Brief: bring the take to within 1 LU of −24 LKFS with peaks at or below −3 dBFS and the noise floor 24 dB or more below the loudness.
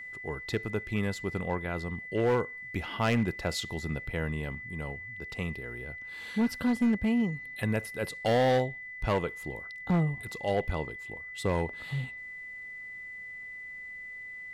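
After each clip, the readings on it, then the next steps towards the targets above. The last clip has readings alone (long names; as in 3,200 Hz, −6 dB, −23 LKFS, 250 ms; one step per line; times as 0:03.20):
share of clipped samples 0.9%; peaks flattened at −20.5 dBFS; interfering tone 2,000 Hz; level of the tone −40 dBFS; integrated loudness −32.0 LKFS; sample peak −20.5 dBFS; target loudness −24.0 LKFS
→ clipped peaks rebuilt −20.5 dBFS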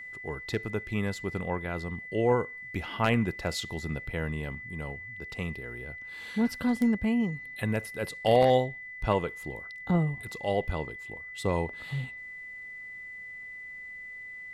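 share of clipped samples 0.0%; interfering tone 2,000 Hz; level of the tone −40 dBFS
→ notch filter 2,000 Hz, Q 30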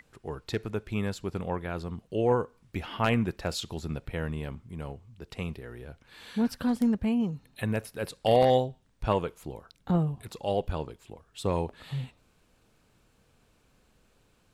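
interfering tone none found; integrated loudness −30.5 LKFS; sample peak −11.5 dBFS; target loudness −24.0 LKFS
→ level +6.5 dB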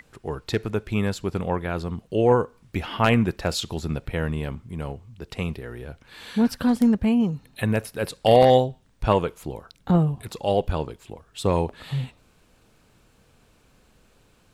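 integrated loudness −24.0 LKFS; sample peak −5.0 dBFS; background noise floor −60 dBFS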